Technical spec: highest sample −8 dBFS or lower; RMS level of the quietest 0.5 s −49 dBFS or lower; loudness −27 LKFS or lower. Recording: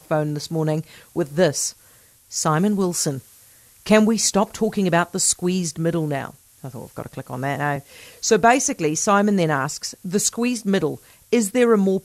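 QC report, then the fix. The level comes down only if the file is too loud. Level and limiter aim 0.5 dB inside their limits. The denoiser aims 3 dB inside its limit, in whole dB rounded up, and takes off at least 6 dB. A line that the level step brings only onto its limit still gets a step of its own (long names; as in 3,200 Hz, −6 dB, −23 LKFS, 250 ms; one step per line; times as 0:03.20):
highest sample −3.0 dBFS: out of spec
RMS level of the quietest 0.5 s −52 dBFS: in spec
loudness −20.5 LKFS: out of spec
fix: level −7 dB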